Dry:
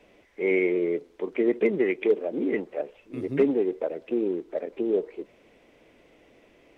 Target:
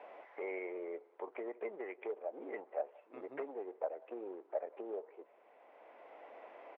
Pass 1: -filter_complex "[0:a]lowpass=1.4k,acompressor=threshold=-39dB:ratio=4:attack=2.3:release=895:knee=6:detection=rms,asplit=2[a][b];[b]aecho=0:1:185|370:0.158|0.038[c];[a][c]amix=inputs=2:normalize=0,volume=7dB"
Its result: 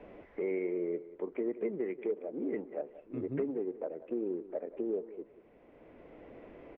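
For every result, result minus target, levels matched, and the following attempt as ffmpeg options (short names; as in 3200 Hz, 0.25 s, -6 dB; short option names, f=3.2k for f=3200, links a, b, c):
1000 Hz band -12.5 dB; echo-to-direct +9.5 dB
-filter_complex "[0:a]lowpass=1.4k,acompressor=threshold=-39dB:ratio=4:attack=2.3:release=895:knee=6:detection=rms,highpass=f=770:t=q:w=2.1,asplit=2[a][b];[b]aecho=0:1:185|370:0.158|0.038[c];[a][c]amix=inputs=2:normalize=0,volume=7dB"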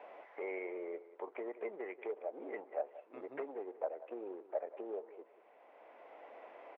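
echo-to-direct +9.5 dB
-filter_complex "[0:a]lowpass=1.4k,acompressor=threshold=-39dB:ratio=4:attack=2.3:release=895:knee=6:detection=rms,highpass=f=770:t=q:w=2.1,asplit=2[a][b];[b]aecho=0:1:185|370:0.0531|0.0127[c];[a][c]amix=inputs=2:normalize=0,volume=7dB"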